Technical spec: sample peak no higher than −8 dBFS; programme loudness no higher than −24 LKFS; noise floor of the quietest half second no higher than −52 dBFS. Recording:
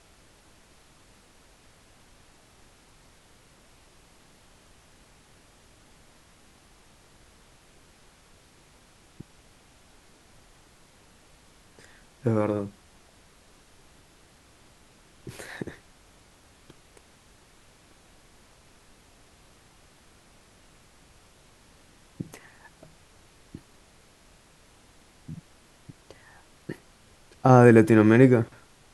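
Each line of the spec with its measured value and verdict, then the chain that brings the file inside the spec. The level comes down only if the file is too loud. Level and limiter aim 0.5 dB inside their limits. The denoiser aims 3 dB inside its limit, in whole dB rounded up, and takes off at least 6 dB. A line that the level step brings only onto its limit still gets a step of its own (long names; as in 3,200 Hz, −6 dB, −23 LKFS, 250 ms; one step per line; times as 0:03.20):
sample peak −2.5 dBFS: out of spec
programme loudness −20.5 LKFS: out of spec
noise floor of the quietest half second −57 dBFS: in spec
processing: level −4 dB
brickwall limiter −8.5 dBFS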